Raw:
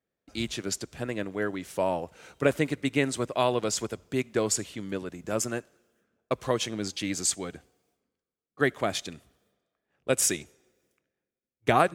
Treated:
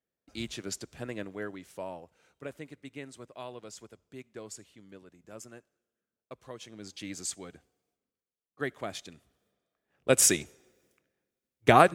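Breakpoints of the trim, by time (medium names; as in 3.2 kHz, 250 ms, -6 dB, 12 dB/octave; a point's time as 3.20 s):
1.20 s -5.5 dB
2.36 s -17.5 dB
6.57 s -17.5 dB
7.02 s -9 dB
9.13 s -9 dB
10.19 s +3 dB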